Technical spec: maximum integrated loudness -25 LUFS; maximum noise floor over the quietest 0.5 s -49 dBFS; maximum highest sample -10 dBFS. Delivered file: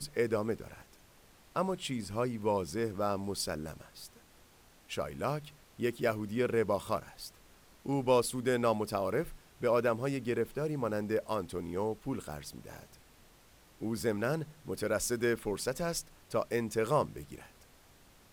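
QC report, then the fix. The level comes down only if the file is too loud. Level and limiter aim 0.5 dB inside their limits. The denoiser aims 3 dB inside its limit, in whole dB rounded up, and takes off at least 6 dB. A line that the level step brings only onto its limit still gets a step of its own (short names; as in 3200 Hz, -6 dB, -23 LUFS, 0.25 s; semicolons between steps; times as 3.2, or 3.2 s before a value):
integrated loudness -34.0 LUFS: OK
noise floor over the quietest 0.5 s -61 dBFS: OK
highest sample -15.0 dBFS: OK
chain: none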